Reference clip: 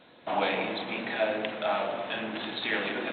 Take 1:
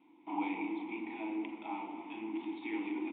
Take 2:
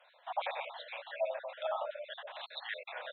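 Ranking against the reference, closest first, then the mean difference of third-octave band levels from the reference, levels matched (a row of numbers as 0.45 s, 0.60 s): 1, 2; 7.5 dB, 12.0 dB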